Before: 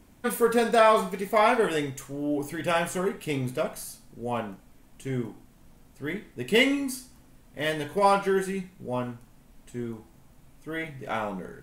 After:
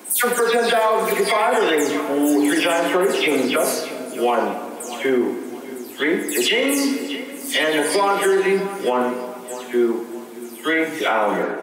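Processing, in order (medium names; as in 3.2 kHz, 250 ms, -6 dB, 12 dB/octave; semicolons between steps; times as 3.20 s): delay that grows with frequency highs early, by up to 197 ms; high-pass 290 Hz 24 dB/octave; compression, threshold -28 dBFS, peak gain reduction 12.5 dB; on a send: feedback delay 629 ms, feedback 36%, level -18.5 dB; on the sum: simulated room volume 2900 m³, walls mixed, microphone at 0.91 m; loudness maximiser +26.5 dB; trim -8.5 dB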